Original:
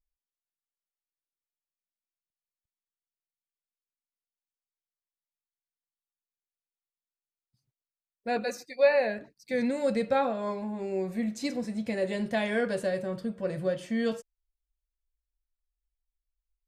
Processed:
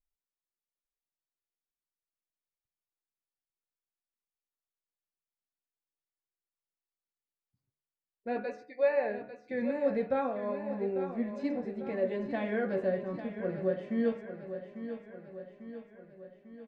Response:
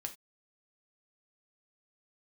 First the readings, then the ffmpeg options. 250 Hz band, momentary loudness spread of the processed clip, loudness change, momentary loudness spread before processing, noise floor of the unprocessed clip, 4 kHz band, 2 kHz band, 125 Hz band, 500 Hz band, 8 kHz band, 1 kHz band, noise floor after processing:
-2.5 dB, 16 LU, -4.0 dB, 8 LU, under -85 dBFS, under -10 dB, -6.5 dB, -3.5 dB, -2.5 dB, under -25 dB, -5.0 dB, under -85 dBFS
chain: -filter_complex "[0:a]lowpass=2000,equalizer=f=360:w=2.2:g=4.5,bandreject=f=73.05:t=h:w=4,bandreject=f=146.1:t=h:w=4,bandreject=f=219.15:t=h:w=4,bandreject=f=292.2:t=h:w=4,bandreject=f=365.25:t=h:w=4,bandreject=f=438.3:t=h:w=4,bandreject=f=511.35:t=h:w=4,bandreject=f=584.4:t=h:w=4,bandreject=f=657.45:t=h:w=4,bandreject=f=730.5:t=h:w=4,bandreject=f=803.55:t=h:w=4,bandreject=f=876.6:t=h:w=4,bandreject=f=949.65:t=h:w=4,bandreject=f=1022.7:t=h:w=4,bandreject=f=1095.75:t=h:w=4,bandreject=f=1168.8:t=h:w=4,bandreject=f=1241.85:t=h:w=4,bandreject=f=1314.9:t=h:w=4,bandreject=f=1387.95:t=h:w=4,bandreject=f=1461:t=h:w=4,bandreject=f=1534.05:t=h:w=4,bandreject=f=1607.1:t=h:w=4,bandreject=f=1680.15:t=h:w=4,bandreject=f=1753.2:t=h:w=4,bandreject=f=1826.25:t=h:w=4,bandreject=f=1899.3:t=h:w=4,bandreject=f=1972.35:t=h:w=4,bandreject=f=2045.4:t=h:w=4,bandreject=f=2118.45:t=h:w=4,bandreject=f=2191.5:t=h:w=4,bandreject=f=2264.55:t=h:w=4,bandreject=f=2337.6:t=h:w=4,bandreject=f=2410.65:t=h:w=4,bandreject=f=2483.7:t=h:w=4,bandreject=f=2556.75:t=h:w=4,bandreject=f=2629.8:t=h:w=4,bandreject=f=2702.85:t=h:w=4,bandreject=f=2775.9:t=h:w=4,flanger=delay=6.6:depth=5:regen=57:speed=0.34:shape=sinusoidal,asplit=2[s0][s1];[s1]aecho=0:1:847|1694|2541|3388|4235|5082:0.299|0.167|0.0936|0.0524|0.0294|0.0164[s2];[s0][s2]amix=inputs=2:normalize=0"

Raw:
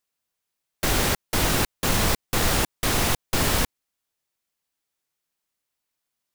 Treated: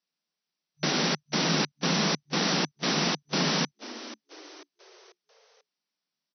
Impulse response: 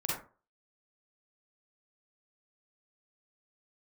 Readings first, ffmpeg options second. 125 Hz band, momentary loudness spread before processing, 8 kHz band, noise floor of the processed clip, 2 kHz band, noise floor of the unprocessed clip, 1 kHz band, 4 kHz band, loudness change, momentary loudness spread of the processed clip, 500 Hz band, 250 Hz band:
-5.0 dB, 3 LU, -6.5 dB, under -85 dBFS, -3.5 dB, -82 dBFS, -3.5 dB, 0.0 dB, -3.5 dB, 15 LU, -3.0 dB, +0.5 dB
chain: -filter_complex "[0:a]afftfilt=real='re*between(b*sr/4096,150,6000)':imag='im*between(b*sr/4096,150,6000)':win_size=4096:overlap=0.75,bass=f=250:g=8,treble=f=4000:g=8,asplit=5[s0][s1][s2][s3][s4];[s1]adelay=490,afreqshift=69,volume=0.168[s5];[s2]adelay=980,afreqshift=138,volume=0.0776[s6];[s3]adelay=1470,afreqshift=207,volume=0.0355[s7];[s4]adelay=1960,afreqshift=276,volume=0.0164[s8];[s0][s5][s6][s7][s8]amix=inputs=5:normalize=0,volume=0.631"

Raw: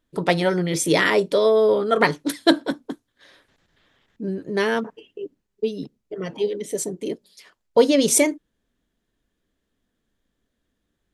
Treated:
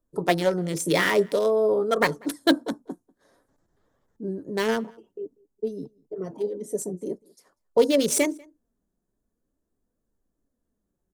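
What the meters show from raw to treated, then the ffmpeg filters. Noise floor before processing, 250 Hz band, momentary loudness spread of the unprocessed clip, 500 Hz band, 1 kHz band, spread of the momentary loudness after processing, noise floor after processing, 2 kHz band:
-77 dBFS, -4.0 dB, 19 LU, -3.5 dB, -4.0 dB, 18 LU, -80 dBFS, -4.0 dB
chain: -filter_complex "[0:a]flanger=delay=1.6:depth=4.1:regen=67:speed=0.5:shape=triangular,acrossover=split=120|1300|5900[s0][s1][s2][s3];[s2]acrusher=bits=4:mix=0:aa=0.5[s4];[s3]asoftclip=type=tanh:threshold=0.0708[s5];[s0][s1][s4][s5]amix=inputs=4:normalize=0,asplit=2[s6][s7];[s7]adelay=192.4,volume=0.0447,highshelf=f=4000:g=-4.33[s8];[s6][s8]amix=inputs=2:normalize=0,volume=1.12"

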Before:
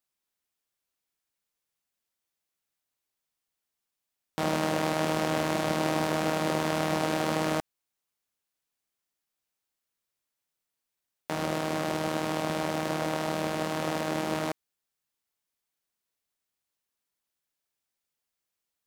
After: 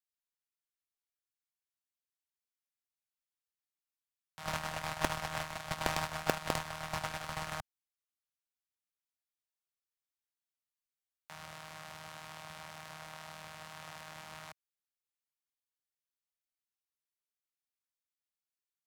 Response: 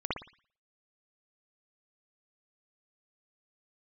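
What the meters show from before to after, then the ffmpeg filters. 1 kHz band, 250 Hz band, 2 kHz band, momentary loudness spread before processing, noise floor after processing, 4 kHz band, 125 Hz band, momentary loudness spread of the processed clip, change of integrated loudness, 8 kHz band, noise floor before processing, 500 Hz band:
-9.0 dB, -17.5 dB, -6.5 dB, 5 LU, under -85 dBFS, -7.0 dB, -11.0 dB, 14 LU, -10.5 dB, -7.0 dB, under -85 dBFS, -14.5 dB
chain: -filter_complex "[0:a]agate=range=0.0398:threshold=0.0708:ratio=16:detection=peak,acrossover=split=150|770|4500[s0][s1][s2][s3];[s1]acrusher=bits=5:mix=0:aa=0.000001[s4];[s0][s4][s2][s3]amix=inputs=4:normalize=0,volume=5.96"

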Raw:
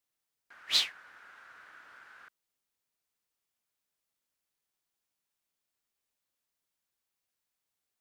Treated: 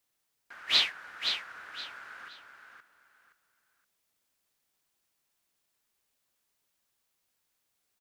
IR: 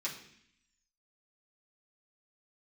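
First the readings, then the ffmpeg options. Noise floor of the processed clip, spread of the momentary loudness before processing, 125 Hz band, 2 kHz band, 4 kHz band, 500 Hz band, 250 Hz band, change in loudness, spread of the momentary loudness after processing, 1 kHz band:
-80 dBFS, 5 LU, no reading, +7.0 dB, +3.5 dB, +7.5 dB, +7.5 dB, -0.5 dB, 21 LU, +7.5 dB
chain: -filter_complex "[0:a]acrossover=split=4100[s0][s1];[s1]acompressor=threshold=0.00447:ratio=4:attack=1:release=60[s2];[s0][s2]amix=inputs=2:normalize=0,aecho=1:1:520|1040|1560:0.473|0.128|0.0345,volume=2.11"

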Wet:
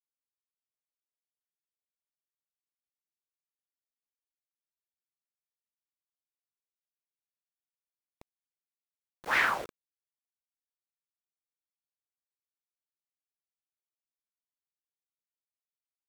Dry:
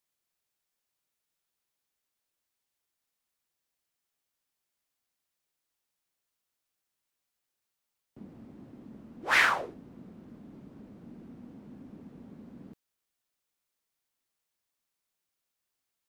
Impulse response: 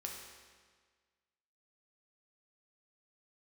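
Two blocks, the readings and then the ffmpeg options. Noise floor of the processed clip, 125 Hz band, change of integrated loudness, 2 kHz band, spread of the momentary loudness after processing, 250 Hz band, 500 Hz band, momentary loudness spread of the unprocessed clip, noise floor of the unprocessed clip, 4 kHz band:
under -85 dBFS, -9.5 dB, -2.5 dB, -3.0 dB, 20 LU, -10.5 dB, -2.5 dB, 20 LU, -85 dBFS, -5.5 dB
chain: -af "highshelf=f=3100:g=-8.5,aeval=exprs='val(0)*gte(abs(val(0)),0.0141)':c=same,volume=0.891"

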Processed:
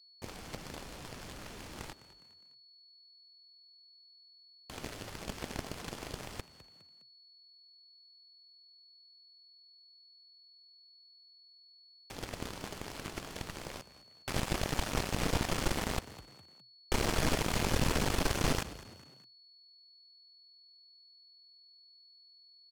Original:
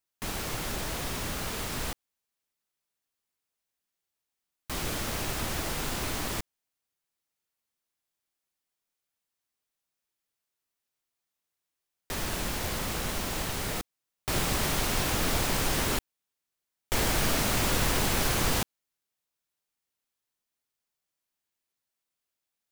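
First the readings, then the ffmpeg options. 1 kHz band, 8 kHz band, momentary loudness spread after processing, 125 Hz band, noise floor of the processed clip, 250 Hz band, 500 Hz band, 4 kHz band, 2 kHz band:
-6.0 dB, -9.5 dB, 21 LU, -4.5 dB, -61 dBFS, -4.0 dB, -4.0 dB, -7.0 dB, -7.0 dB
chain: -filter_complex "[0:a]aemphasis=mode=reproduction:type=50fm,aeval=exprs='val(0)+0.00224*sin(2*PI*4400*n/s)':c=same,equalizer=f=1400:w=0.48:g=-5.5,asplit=2[s0][s1];[s1]acompressor=threshold=0.00708:ratio=6,volume=0.708[s2];[s0][s2]amix=inputs=2:normalize=0,aeval=exprs='0.178*(cos(1*acos(clip(val(0)/0.178,-1,1)))-cos(1*PI/2))+0.0398*(cos(7*acos(clip(val(0)/0.178,-1,1)))-cos(7*PI/2))':c=same,bandreject=f=3800:w=27,asplit=4[s3][s4][s5][s6];[s4]adelay=205,afreqshift=41,volume=0.15[s7];[s5]adelay=410,afreqshift=82,volume=0.0596[s8];[s6]adelay=615,afreqshift=123,volume=0.024[s9];[s3][s7][s8][s9]amix=inputs=4:normalize=0,volume=0.75"

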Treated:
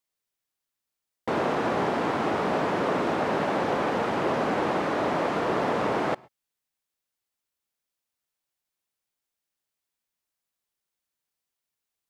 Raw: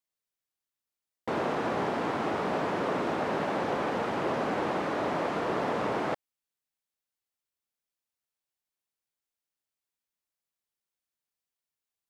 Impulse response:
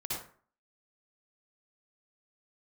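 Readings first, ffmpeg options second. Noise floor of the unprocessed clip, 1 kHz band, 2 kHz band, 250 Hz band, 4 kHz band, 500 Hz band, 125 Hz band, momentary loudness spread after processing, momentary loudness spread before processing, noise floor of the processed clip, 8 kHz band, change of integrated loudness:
under -85 dBFS, +4.0 dB, +4.0 dB, +4.0 dB, +4.0 dB, +4.0 dB, +4.0 dB, 2 LU, 2 LU, under -85 dBFS, +4.0 dB, +4.0 dB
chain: -filter_complex "[0:a]asplit=2[s0][s1];[1:a]atrim=start_sample=2205,atrim=end_sample=3969,adelay=51[s2];[s1][s2]afir=irnorm=-1:irlink=0,volume=0.0501[s3];[s0][s3]amix=inputs=2:normalize=0,volume=1.58"

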